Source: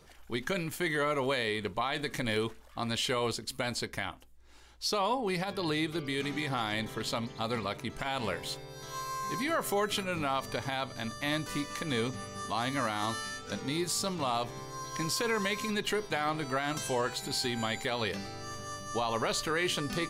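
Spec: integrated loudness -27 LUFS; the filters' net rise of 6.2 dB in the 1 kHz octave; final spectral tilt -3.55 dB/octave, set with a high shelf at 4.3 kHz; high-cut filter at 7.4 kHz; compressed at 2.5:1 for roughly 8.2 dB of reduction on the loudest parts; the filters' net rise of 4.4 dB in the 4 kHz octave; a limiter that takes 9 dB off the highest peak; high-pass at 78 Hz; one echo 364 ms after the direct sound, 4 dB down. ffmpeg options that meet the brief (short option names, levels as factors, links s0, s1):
-af "highpass=78,lowpass=7400,equalizer=f=1000:t=o:g=7.5,equalizer=f=4000:t=o:g=7,highshelf=f=4300:g=-3.5,acompressor=threshold=0.0224:ratio=2.5,alimiter=level_in=1.5:limit=0.0631:level=0:latency=1,volume=0.668,aecho=1:1:364:0.631,volume=2.82"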